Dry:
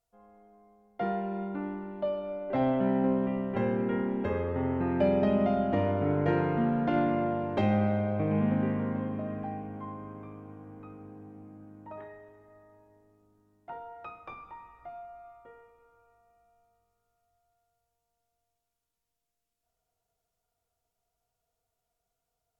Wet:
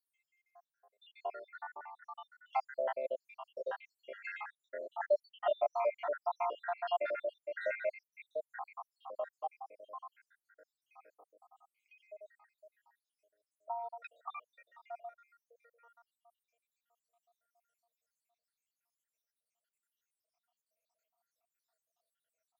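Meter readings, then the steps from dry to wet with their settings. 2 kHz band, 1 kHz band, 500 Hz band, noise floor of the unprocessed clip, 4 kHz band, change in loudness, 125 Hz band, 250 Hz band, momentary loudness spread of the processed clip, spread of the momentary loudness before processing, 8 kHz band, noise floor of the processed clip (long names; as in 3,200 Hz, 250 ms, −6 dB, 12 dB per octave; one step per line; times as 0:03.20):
−3.5 dB, −4.0 dB, −7.0 dB, −84 dBFS, −4.5 dB, −10.0 dB, below −40 dB, below −35 dB, 17 LU, 21 LU, can't be measured, below −85 dBFS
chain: time-frequency cells dropped at random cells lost 83%
elliptic high-pass filter 580 Hz, stop band 80 dB
level +4.5 dB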